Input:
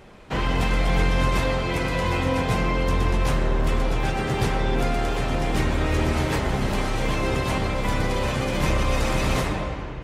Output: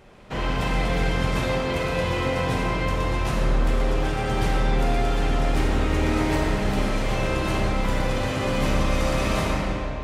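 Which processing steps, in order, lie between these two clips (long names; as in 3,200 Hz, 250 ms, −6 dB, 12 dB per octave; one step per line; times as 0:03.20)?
comb and all-pass reverb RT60 2.1 s, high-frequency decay 0.85×, pre-delay 5 ms, DRR −1 dB
level −4 dB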